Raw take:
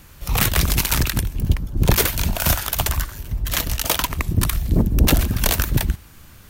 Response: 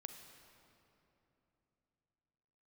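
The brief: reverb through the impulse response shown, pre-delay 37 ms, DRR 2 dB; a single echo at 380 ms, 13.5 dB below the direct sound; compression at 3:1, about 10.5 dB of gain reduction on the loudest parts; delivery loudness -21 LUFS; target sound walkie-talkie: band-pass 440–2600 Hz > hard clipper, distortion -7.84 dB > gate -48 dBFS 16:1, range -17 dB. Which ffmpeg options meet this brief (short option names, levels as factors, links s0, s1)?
-filter_complex "[0:a]acompressor=threshold=0.0562:ratio=3,aecho=1:1:380:0.211,asplit=2[s0][s1];[1:a]atrim=start_sample=2205,adelay=37[s2];[s1][s2]afir=irnorm=-1:irlink=0,volume=1.33[s3];[s0][s3]amix=inputs=2:normalize=0,highpass=440,lowpass=2600,asoftclip=type=hard:threshold=0.0251,agate=range=0.141:threshold=0.00398:ratio=16,volume=6.68"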